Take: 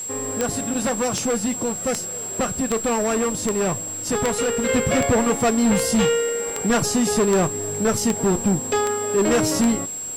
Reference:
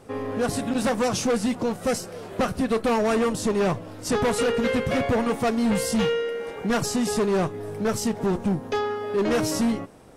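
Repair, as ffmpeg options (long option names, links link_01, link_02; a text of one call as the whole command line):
ffmpeg -i in.wav -af "adeclick=threshold=4,bandreject=frequency=7600:width=30,afwtdn=0.0063,asetnsamples=nb_out_samples=441:pad=0,asendcmd='4.69 volume volume -4dB',volume=0dB" out.wav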